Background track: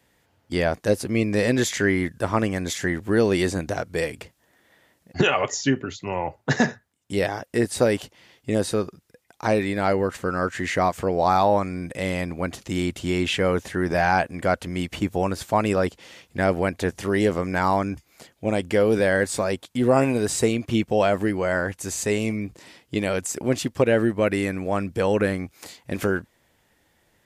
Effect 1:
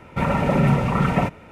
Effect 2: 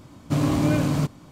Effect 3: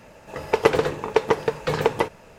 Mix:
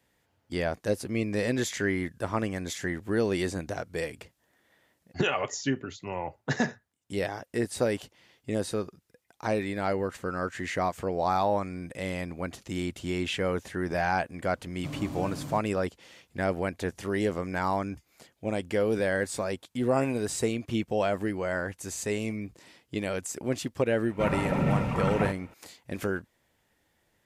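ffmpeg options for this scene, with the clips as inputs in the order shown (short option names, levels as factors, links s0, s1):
-filter_complex "[0:a]volume=0.447[s0];[2:a]atrim=end=1.31,asetpts=PTS-STARTPTS,volume=0.168,afade=t=in:d=0.004:c=hsin,afade=t=out:st=1.306:d=0.004:c=hsin,adelay=14530[s1];[1:a]atrim=end=1.51,asetpts=PTS-STARTPTS,volume=0.376,afade=t=in:d=0.004:c=hsin,afade=t=out:st=1.506:d=0.004:c=hsin,adelay=24030[s2];[s0][s1][s2]amix=inputs=3:normalize=0"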